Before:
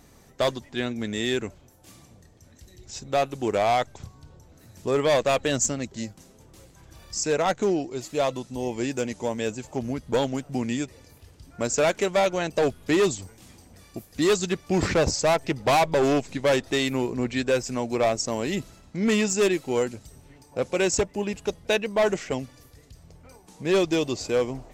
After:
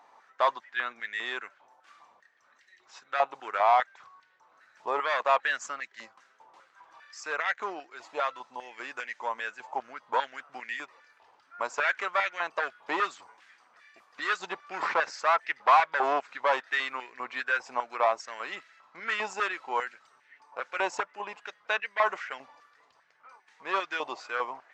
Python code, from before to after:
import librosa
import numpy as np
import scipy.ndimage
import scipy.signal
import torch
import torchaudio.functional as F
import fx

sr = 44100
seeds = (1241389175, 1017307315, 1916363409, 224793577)

y = fx.spacing_loss(x, sr, db_at_10k=29)
y = fx.filter_held_highpass(y, sr, hz=5.0, low_hz=900.0, high_hz=1800.0)
y = y * 10.0 ** (1.0 / 20.0)